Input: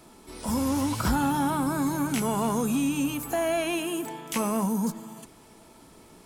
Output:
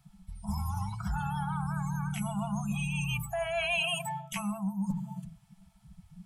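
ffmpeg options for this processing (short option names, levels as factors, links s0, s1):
-filter_complex "[0:a]acrossover=split=290|6000[s0][s1][s2];[s0]acontrast=89[s3];[s3][s1][s2]amix=inputs=3:normalize=0,apsyclip=3.98,afftfilt=real='re*(1-between(b*sr/4096,210,650))':imag='im*(1-between(b*sr/4096,210,650))':win_size=4096:overlap=0.75,bandreject=f=165.3:t=h:w=4,bandreject=f=330.6:t=h:w=4,bandreject=f=495.9:t=h:w=4,bandreject=f=661.2:t=h:w=4,bandreject=f=826.5:t=h:w=4,bandreject=f=991.8:t=h:w=4,bandreject=f=1157.1:t=h:w=4,bandreject=f=1322.4:t=h:w=4,bandreject=f=1487.7:t=h:w=4,bandreject=f=1653:t=h:w=4,bandreject=f=1818.3:t=h:w=4,bandreject=f=1983.6:t=h:w=4,bandreject=f=2148.9:t=h:w=4,bandreject=f=2314.2:t=h:w=4,bandreject=f=2479.5:t=h:w=4,bandreject=f=2644.8:t=h:w=4,bandreject=f=2810.1:t=h:w=4,bandreject=f=2975.4:t=h:w=4,bandreject=f=3140.7:t=h:w=4,bandreject=f=3306:t=h:w=4,bandreject=f=3471.3:t=h:w=4,bandreject=f=3636.6:t=h:w=4,bandreject=f=3801.9:t=h:w=4,bandreject=f=3967.2:t=h:w=4,bandreject=f=4132.5:t=h:w=4,afftdn=nr=24:nf=-23,equalizer=f=100:t=o:w=0.33:g=-6,equalizer=f=250:t=o:w=0.33:g=5,equalizer=f=1000:t=o:w=0.33:g=-5,equalizer=f=3150:t=o:w=0.33:g=3,areverse,acompressor=threshold=0.0501:ratio=16,areverse,adynamicequalizer=threshold=0.00355:dfrequency=2500:dqfactor=3.5:tfrequency=2500:tqfactor=3.5:attack=5:release=100:ratio=0.375:range=2.5:mode=boostabove:tftype=bell,volume=0.668"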